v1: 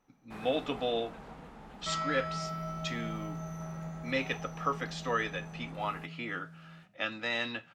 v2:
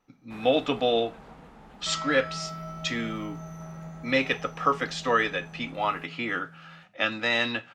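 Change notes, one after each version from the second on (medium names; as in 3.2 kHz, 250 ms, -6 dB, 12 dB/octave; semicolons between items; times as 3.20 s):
speech +8.0 dB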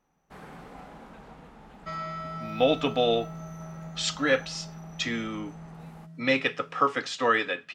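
speech: entry +2.15 s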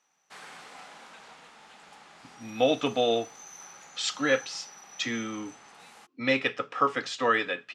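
speech: send -6.5 dB; first sound: add frequency weighting ITU-R 468; second sound: muted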